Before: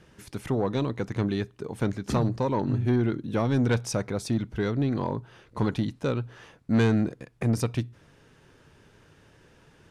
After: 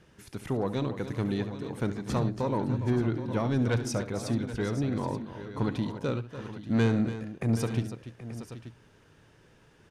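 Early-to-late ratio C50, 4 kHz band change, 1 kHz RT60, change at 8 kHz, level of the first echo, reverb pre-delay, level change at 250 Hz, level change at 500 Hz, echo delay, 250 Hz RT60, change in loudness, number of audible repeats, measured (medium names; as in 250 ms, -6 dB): no reverb, -2.5 dB, no reverb, -2.5 dB, -13.5 dB, no reverb, -2.5 dB, -2.5 dB, 70 ms, no reverb, -3.0 dB, 4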